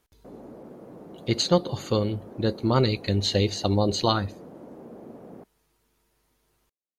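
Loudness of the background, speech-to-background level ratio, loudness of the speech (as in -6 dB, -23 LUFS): -44.5 LUFS, 19.5 dB, -25.0 LUFS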